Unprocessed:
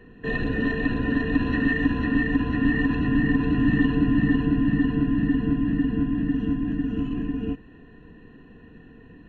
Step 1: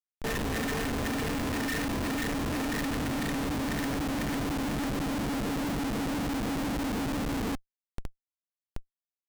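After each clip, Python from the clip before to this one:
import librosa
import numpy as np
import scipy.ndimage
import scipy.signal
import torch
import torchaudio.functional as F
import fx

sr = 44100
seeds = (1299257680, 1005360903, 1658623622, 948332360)

y = fx.schmitt(x, sr, flips_db=-36.5)
y = F.gain(torch.from_numpy(y), -7.0).numpy()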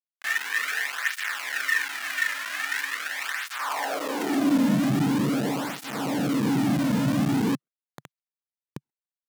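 y = scipy.ndimage.median_filter(x, 15, mode='constant')
y = fx.filter_sweep_highpass(y, sr, from_hz=1700.0, to_hz=140.0, start_s=3.4, end_s=4.91, q=2.6)
y = fx.flanger_cancel(y, sr, hz=0.43, depth_ms=2.7)
y = F.gain(torch.from_numpy(y), 6.5).numpy()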